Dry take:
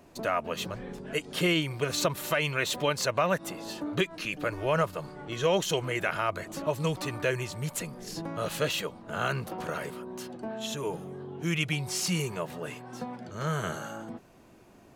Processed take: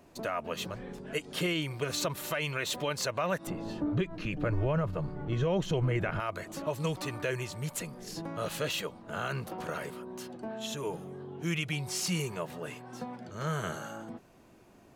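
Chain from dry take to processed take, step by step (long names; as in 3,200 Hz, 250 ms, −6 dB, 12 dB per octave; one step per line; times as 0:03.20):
0:03.47–0:06.20: RIAA equalisation playback
brickwall limiter −18.5 dBFS, peak gain reduction 8 dB
level −2.5 dB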